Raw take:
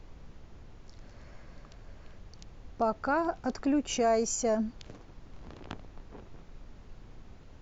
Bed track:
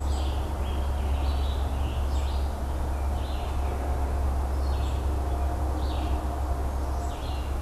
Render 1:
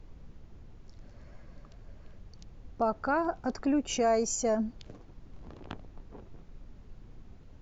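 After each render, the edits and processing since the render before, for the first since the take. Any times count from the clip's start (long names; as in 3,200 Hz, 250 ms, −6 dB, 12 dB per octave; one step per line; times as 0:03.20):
broadband denoise 6 dB, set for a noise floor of −52 dBFS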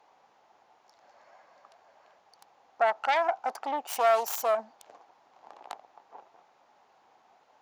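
phase distortion by the signal itself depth 0.34 ms
high-pass with resonance 800 Hz, resonance Q 4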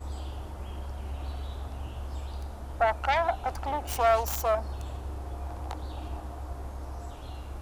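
mix in bed track −9.5 dB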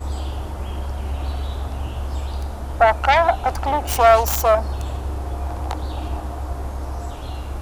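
level +10.5 dB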